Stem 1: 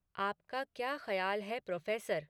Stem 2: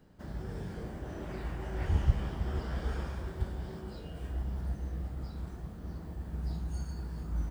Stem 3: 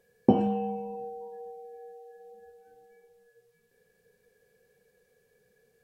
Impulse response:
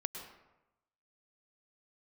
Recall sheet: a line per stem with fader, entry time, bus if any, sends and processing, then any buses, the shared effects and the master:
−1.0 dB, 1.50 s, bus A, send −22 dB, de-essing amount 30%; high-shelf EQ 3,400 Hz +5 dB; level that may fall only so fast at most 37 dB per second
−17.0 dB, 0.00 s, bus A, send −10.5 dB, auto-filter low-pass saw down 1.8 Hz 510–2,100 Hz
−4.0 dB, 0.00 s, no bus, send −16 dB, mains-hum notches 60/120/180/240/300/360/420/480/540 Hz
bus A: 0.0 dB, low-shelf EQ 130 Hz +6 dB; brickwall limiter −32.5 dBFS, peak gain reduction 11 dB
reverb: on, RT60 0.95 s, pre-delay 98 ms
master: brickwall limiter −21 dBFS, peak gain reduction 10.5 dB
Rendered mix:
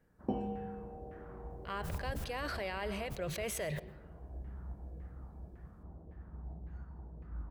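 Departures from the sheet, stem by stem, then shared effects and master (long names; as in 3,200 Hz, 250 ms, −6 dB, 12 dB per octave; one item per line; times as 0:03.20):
stem 3 −4.0 dB → −15.0 dB
reverb return +8.0 dB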